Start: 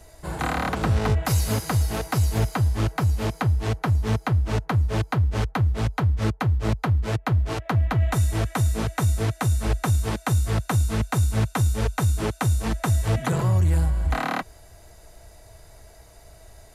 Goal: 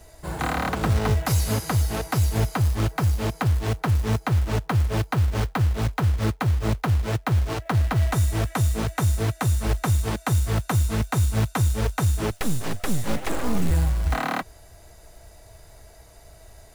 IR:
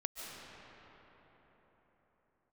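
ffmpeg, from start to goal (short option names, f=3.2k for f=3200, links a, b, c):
-filter_complex "[0:a]asettb=1/sr,asplit=3[a][b][c];[a]atrim=end=12.314[d];[b]atrim=start=12.31:end=13.71,asetpts=PTS-STARTPTS,afade=t=in:d=0.004:c=qsin,afade=t=out:st=1.396:d=0.004:c=qsin,aeval=exprs='abs(val(0))':c=same[e];[c]atrim=start=13.706[f];[d][e]acrossfade=d=0.004:c1=hsin:c2=qsin[g];[g][f]acrossfade=d=0.004:c1=qsin:c2=hsin,acrusher=bits=5:mode=log:mix=0:aa=0.000001"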